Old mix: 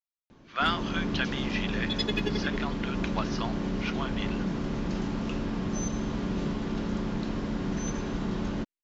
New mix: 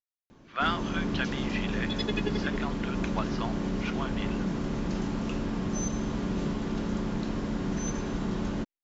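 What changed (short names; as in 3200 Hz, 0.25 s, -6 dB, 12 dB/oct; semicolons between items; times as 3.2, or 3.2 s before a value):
first sound: remove air absorption 130 m; master: add high shelf 4100 Hz -9.5 dB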